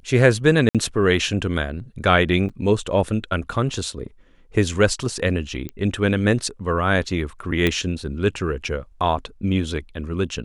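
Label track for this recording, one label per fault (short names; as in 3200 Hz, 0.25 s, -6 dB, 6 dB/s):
0.690000	0.750000	gap 57 ms
2.490000	2.500000	gap 6.1 ms
5.690000	5.690000	pop -17 dBFS
7.670000	7.670000	pop -7 dBFS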